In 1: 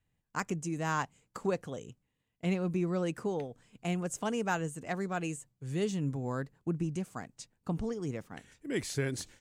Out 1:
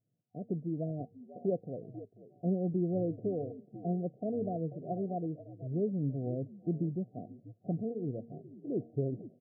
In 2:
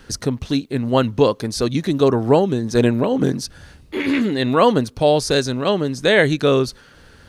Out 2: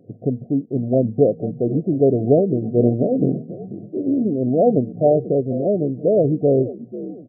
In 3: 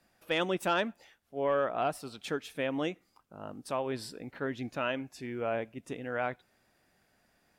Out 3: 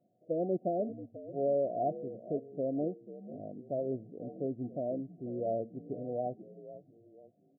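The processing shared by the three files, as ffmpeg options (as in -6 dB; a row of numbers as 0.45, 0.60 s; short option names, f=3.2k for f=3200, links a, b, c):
-filter_complex "[0:a]bandreject=f=232.3:t=h:w=4,bandreject=f=464.6:t=h:w=4,asplit=5[a][b][c][d][e];[b]adelay=489,afreqshift=-74,volume=-14dB[f];[c]adelay=978,afreqshift=-148,volume=-22.4dB[g];[d]adelay=1467,afreqshift=-222,volume=-30.8dB[h];[e]adelay=1956,afreqshift=-296,volume=-39.2dB[i];[a][f][g][h][i]amix=inputs=5:normalize=0,afftfilt=real='re*between(b*sr/4096,100,750)':imag='im*between(b*sr/4096,100,750)':win_size=4096:overlap=0.75"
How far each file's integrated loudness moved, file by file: -1.0, -1.0, -2.0 LU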